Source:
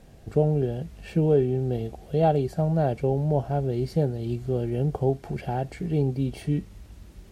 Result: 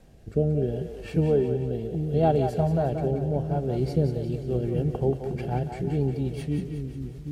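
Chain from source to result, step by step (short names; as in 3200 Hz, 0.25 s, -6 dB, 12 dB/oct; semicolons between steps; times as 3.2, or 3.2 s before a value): rotary speaker horn 0.7 Hz, later 8 Hz, at 3.69; split-band echo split 370 Hz, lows 0.777 s, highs 0.18 s, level -7 dB; harmoniser -12 st -15 dB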